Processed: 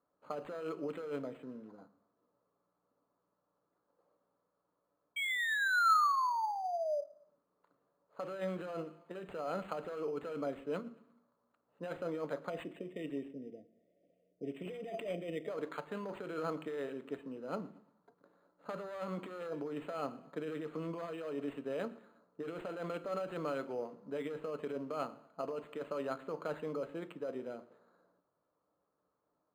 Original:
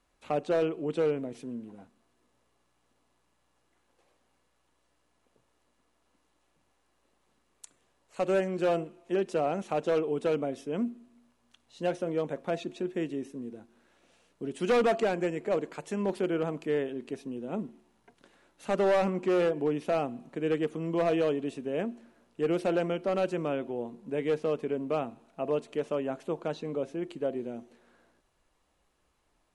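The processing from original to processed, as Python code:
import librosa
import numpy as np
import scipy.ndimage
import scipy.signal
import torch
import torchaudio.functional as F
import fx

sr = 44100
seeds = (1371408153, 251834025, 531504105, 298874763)

p1 = fx.env_lowpass(x, sr, base_hz=700.0, full_db=-26.5)
p2 = fx.spec_erase(p1, sr, start_s=12.5, length_s=2.98, low_hz=730.0, high_hz=1800.0)
p3 = fx.over_compress(p2, sr, threshold_db=-32.0, ratio=-1.0)
p4 = fx.spec_paint(p3, sr, seeds[0], shape='fall', start_s=5.16, length_s=1.85, low_hz=570.0, high_hz=2300.0, level_db=-29.0)
p5 = fx.cabinet(p4, sr, low_hz=230.0, low_slope=12, high_hz=6300.0, hz=(240.0, 360.0, 770.0, 1300.0, 3900.0), db=(-7, -9, -6, 8, -5))
p6 = p5 + fx.echo_feedback(p5, sr, ms=116, feedback_pct=39, wet_db=-22.5, dry=0)
p7 = fx.room_shoebox(p6, sr, seeds[1], volume_m3=320.0, walls='furnished', distance_m=0.36)
p8 = np.interp(np.arange(len(p7)), np.arange(len(p7))[::8], p7[::8])
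y = p8 * 10.0 ** (-3.0 / 20.0)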